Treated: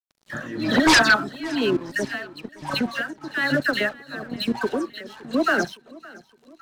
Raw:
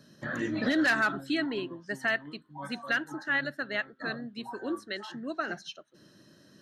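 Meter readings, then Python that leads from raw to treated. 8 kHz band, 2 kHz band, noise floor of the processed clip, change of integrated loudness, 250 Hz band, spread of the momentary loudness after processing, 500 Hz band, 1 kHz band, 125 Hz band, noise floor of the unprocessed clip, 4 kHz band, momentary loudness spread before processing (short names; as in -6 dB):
+17.5 dB, +7.5 dB, -62 dBFS, +9.0 dB, +8.5 dB, 20 LU, +10.0 dB, +10.5 dB, +9.5 dB, -60 dBFS, +12.0 dB, 14 LU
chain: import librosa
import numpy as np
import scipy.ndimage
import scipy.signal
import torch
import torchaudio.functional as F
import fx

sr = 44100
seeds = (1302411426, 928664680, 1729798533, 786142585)

p1 = scipy.signal.sosfilt(scipy.signal.cheby1(2, 1.0, 6200.0, 'lowpass', fs=sr, output='sos'), x)
p2 = fx.peak_eq(p1, sr, hz=2100.0, db=-3.0, octaves=0.43)
p3 = fx.level_steps(p2, sr, step_db=13)
p4 = fx.dispersion(p3, sr, late='lows', ms=104.0, hz=2400.0)
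p5 = np.sign(p4) * np.maximum(np.abs(p4) - 10.0 ** (-58.0 / 20.0), 0.0)
p6 = p5 * (1.0 - 0.85 / 2.0 + 0.85 / 2.0 * np.cos(2.0 * np.pi * 1.1 * (np.arange(len(p5)) / sr)))
p7 = fx.fold_sine(p6, sr, drive_db=10, ceiling_db=-18.5)
p8 = p7 + fx.echo_feedback(p7, sr, ms=564, feedback_pct=50, wet_db=-22, dry=0)
y = p8 * 10.0 ** (8.0 / 20.0)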